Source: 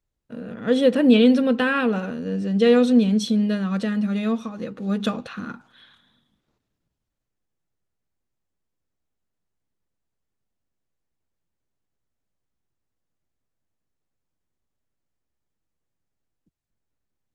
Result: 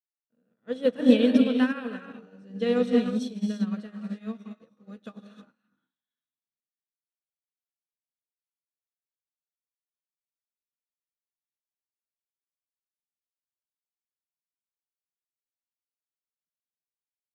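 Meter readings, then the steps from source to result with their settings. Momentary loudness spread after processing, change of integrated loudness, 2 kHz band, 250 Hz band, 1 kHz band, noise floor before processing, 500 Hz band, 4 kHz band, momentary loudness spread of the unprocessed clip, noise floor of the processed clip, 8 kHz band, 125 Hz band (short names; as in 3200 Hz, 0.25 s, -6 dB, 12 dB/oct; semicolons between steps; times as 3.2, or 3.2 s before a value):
20 LU, -4.5 dB, -9.5 dB, -6.0 dB, -10.5 dB, -81 dBFS, -6.5 dB, -8.0 dB, 17 LU, under -85 dBFS, n/a, under -10 dB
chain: HPF 120 Hz; non-linear reverb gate 0.37 s rising, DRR 2.5 dB; upward expander 2.5:1, over -36 dBFS; gain -2 dB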